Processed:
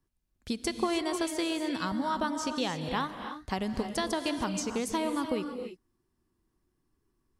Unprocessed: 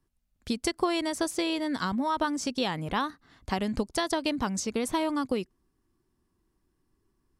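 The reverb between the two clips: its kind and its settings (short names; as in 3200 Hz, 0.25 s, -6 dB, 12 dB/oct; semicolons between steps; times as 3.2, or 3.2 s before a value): non-linear reverb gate 0.34 s rising, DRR 6.5 dB; gain -3 dB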